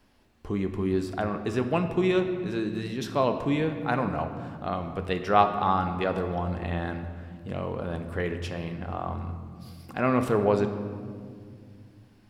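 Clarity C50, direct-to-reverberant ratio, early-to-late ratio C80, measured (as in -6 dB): 8.5 dB, 6.5 dB, 9.5 dB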